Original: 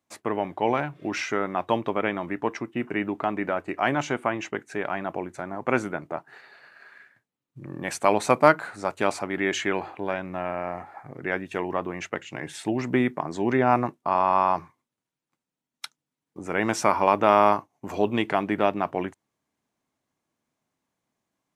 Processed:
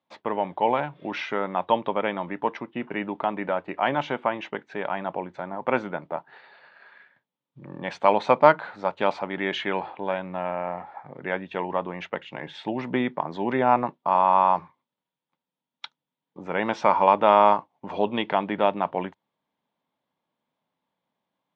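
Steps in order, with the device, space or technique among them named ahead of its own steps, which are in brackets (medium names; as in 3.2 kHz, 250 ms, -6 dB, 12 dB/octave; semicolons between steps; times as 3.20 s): guitar cabinet (cabinet simulation 100–4200 Hz, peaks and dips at 110 Hz -5 dB, 180 Hz +4 dB, 340 Hz -3 dB, 540 Hz +6 dB, 910 Hz +8 dB, 3.4 kHz +7 dB); trim -2.5 dB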